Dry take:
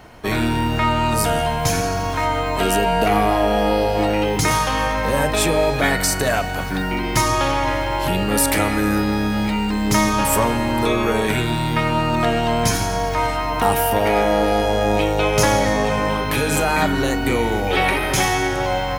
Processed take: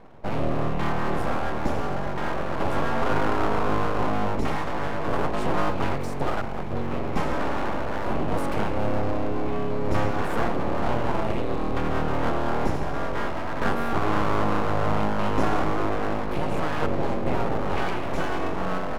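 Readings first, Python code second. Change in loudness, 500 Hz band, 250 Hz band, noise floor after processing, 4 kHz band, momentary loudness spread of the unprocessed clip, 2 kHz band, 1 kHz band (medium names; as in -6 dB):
-8.5 dB, -7.5 dB, -7.0 dB, -26 dBFS, -15.0 dB, 4 LU, -10.0 dB, -7.5 dB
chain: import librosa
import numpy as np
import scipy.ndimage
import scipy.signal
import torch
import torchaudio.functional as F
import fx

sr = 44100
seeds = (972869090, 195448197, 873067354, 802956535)

y = np.convolve(x, np.full(28, 1.0 / 28))[:len(x)]
y = np.abs(y)
y = y * librosa.db_to_amplitude(-1.0)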